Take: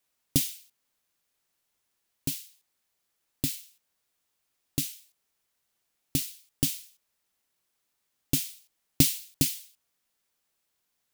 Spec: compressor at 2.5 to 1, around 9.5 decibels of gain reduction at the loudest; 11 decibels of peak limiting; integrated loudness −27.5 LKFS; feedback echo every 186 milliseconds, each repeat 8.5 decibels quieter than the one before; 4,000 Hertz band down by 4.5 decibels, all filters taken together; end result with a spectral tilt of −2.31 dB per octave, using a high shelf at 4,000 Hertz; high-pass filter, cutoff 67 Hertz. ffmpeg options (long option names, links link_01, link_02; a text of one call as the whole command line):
ffmpeg -i in.wav -af "highpass=67,highshelf=frequency=4000:gain=-3.5,equalizer=frequency=4000:width_type=o:gain=-3.5,acompressor=threshold=-32dB:ratio=2.5,alimiter=limit=-22dB:level=0:latency=1,aecho=1:1:186|372|558|744:0.376|0.143|0.0543|0.0206,volume=15.5dB" out.wav